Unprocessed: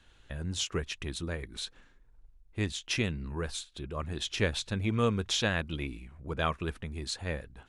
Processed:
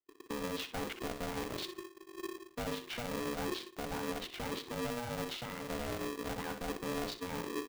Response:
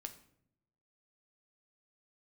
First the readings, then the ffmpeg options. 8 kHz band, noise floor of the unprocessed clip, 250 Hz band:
−7.5 dB, −61 dBFS, −4.0 dB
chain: -filter_complex "[0:a]afwtdn=0.01,aemphasis=mode=reproduction:type=75fm,agate=range=-33dB:threshold=-51dB:ratio=3:detection=peak,highshelf=frequency=3900:gain=-11,bandreject=frequency=50.85:width_type=h:width=4,bandreject=frequency=101.7:width_type=h:width=4,bandreject=frequency=152.55:width_type=h:width=4,bandreject=frequency=203.4:width_type=h:width=4,areverse,acompressor=threshold=-41dB:ratio=6,areverse,alimiter=level_in=18.5dB:limit=-24dB:level=0:latency=1:release=118,volume=-18.5dB,acrusher=bits=3:mode=log:mix=0:aa=0.000001,asplit=2[link_01][link_02];[link_02]adelay=62,lowpass=frequency=3300:poles=1,volume=-8.5dB,asplit=2[link_03][link_04];[link_04]adelay=62,lowpass=frequency=3300:poles=1,volume=0.24,asplit=2[link_05][link_06];[link_06]adelay=62,lowpass=frequency=3300:poles=1,volume=0.24[link_07];[link_01][link_03][link_05][link_07]amix=inputs=4:normalize=0,aeval=exprs='val(0)*sgn(sin(2*PI*360*n/s))':channel_layout=same,volume=11dB"

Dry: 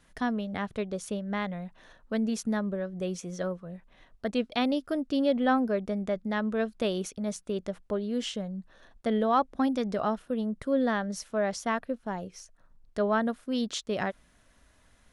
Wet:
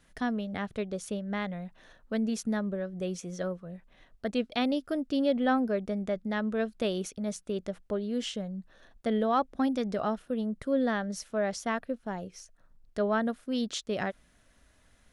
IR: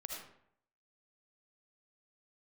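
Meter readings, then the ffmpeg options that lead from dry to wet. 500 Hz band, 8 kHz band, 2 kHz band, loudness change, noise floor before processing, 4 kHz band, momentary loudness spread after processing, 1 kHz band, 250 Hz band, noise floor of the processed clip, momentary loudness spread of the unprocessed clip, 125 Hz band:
−1.0 dB, −1.0 dB, −1.5 dB, −1.5 dB, −63 dBFS, −1.0 dB, 10 LU, −2.5 dB, −1.0 dB, −64 dBFS, 10 LU, −1.0 dB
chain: -af "equalizer=frequency=1000:width=3.1:gain=-3.5,volume=-1dB"

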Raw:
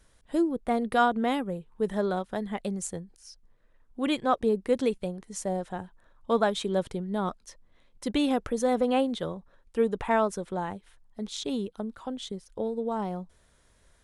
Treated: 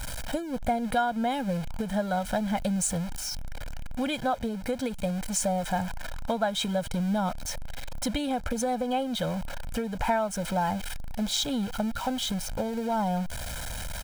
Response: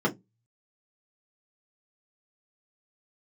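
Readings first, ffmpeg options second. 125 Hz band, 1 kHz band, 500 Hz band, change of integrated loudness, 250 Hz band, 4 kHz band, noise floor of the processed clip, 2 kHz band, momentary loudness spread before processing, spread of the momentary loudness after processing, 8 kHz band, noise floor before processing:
+6.0 dB, +1.0 dB, −3.0 dB, −0.5 dB, 0.0 dB, +5.5 dB, −36 dBFS, +1.0 dB, 14 LU, 8 LU, +9.0 dB, −63 dBFS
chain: -af "aeval=exprs='val(0)+0.5*0.0141*sgn(val(0))':channel_layout=same,acompressor=threshold=-29dB:ratio=10,aecho=1:1:1.3:0.88,volume=4dB"

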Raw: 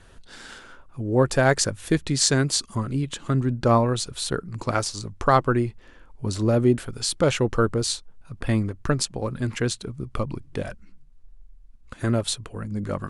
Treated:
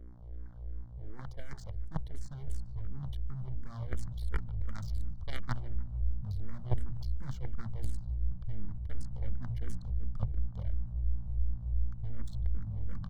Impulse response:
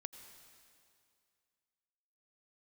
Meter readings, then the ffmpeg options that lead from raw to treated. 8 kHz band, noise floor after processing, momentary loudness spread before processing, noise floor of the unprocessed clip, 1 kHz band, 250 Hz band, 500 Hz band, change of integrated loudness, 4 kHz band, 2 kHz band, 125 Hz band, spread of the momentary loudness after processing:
−33.0 dB, −45 dBFS, 13 LU, −50 dBFS, −25.5 dB, −22.5 dB, −29.5 dB, −15.5 dB, −28.5 dB, −23.0 dB, −10.5 dB, 9 LU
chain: -filter_complex "[0:a]deesser=0.6,bandreject=frequency=60:width_type=h:width=6,bandreject=frequency=120:width_type=h:width=6,bandreject=frequency=180:width_type=h:width=6,bandreject=frequency=240:width_type=h:width=6,bandreject=frequency=300:width_type=h:width=6,bandreject=frequency=360:width_type=h:width=6,bandreject=frequency=420:width_type=h:width=6,anlmdn=6.31,aeval=exprs='val(0)+0.02*(sin(2*PI*60*n/s)+sin(2*PI*2*60*n/s)/2+sin(2*PI*3*60*n/s)/3+sin(2*PI*4*60*n/s)/4+sin(2*PI*5*60*n/s)/5)':channel_layout=same,lowshelf=frequency=430:gain=7.5,areverse,acompressor=threshold=-24dB:ratio=8,areverse,aeval=exprs='0.15*(cos(1*acos(clip(val(0)/0.15,-1,1)))-cos(1*PI/2))+0.0668*(cos(3*acos(clip(val(0)/0.15,-1,1)))-cos(3*PI/2))+0.00188*(cos(4*acos(clip(val(0)/0.15,-1,1)))-cos(4*PI/2))+0.0266*(cos(5*acos(clip(val(0)/0.15,-1,1)))-cos(5*PI/2))':channel_layout=same,aeval=exprs='max(val(0),0)':channel_layout=same,asubboost=boost=9.5:cutoff=120,asuperstop=centerf=2600:order=12:qfactor=5.5,asplit=2[link_01][link_02];[link_02]adelay=148,lowpass=frequency=2200:poles=1,volume=-18dB,asplit=2[link_03][link_04];[link_04]adelay=148,lowpass=frequency=2200:poles=1,volume=0.54,asplit=2[link_05][link_06];[link_06]adelay=148,lowpass=frequency=2200:poles=1,volume=0.54,asplit=2[link_07][link_08];[link_08]adelay=148,lowpass=frequency=2200:poles=1,volume=0.54,asplit=2[link_09][link_10];[link_10]adelay=148,lowpass=frequency=2200:poles=1,volume=0.54[link_11];[link_01][link_03][link_05][link_07][link_09][link_11]amix=inputs=6:normalize=0,asplit=2[link_12][link_13];[link_13]afreqshift=-2.8[link_14];[link_12][link_14]amix=inputs=2:normalize=1,volume=-4.5dB"

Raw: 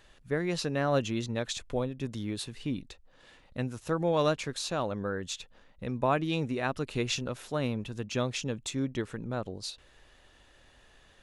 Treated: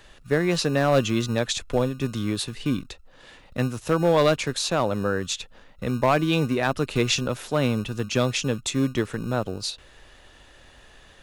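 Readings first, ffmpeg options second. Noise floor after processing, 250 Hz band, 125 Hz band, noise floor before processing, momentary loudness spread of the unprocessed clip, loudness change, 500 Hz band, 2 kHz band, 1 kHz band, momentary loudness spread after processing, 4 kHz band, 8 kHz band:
−52 dBFS, +8.0 dB, +8.0 dB, −60 dBFS, 11 LU, +8.0 dB, +8.0 dB, +8.5 dB, +7.0 dB, 10 LU, +8.5 dB, +8.5 dB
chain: -filter_complex "[0:a]acrossover=split=180[link_01][link_02];[link_01]acrusher=samples=33:mix=1:aa=0.000001[link_03];[link_03][link_02]amix=inputs=2:normalize=0,volume=20dB,asoftclip=hard,volume=-20dB,volume=8.5dB"

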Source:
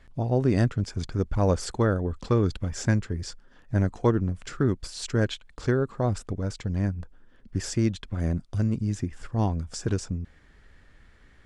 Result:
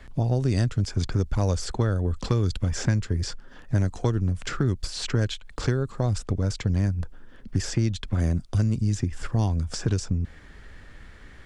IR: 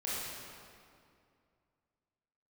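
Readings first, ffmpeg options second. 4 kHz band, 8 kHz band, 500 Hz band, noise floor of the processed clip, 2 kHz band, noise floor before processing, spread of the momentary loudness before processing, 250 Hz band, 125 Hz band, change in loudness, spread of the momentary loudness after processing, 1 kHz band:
+4.0 dB, +2.5 dB, −3.5 dB, −47 dBFS, 0.0 dB, −56 dBFS, 9 LU, −1.5 dB, +3.0 dB, +1.0 dB, 5 LU, −2.5 dB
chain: -filter_complex "[0:a]acrossover=split=110|3400|7000[link_01][link_02][link_03][link_04];[link_01]acompressor=threshold=-33dB:ratio=4[link_05];[link_02]acompressor=threshold=-36dB:ratio=4[link_06];[link_03]acompressor=threshold=-46dB:ratio=4[link_07];[link_04]acompressor=threshold=-58dB:ratio=4[link_08];[link_05][link_06][link_07][link_08]amix=inputs=4:normalize=0,volume=9dB"

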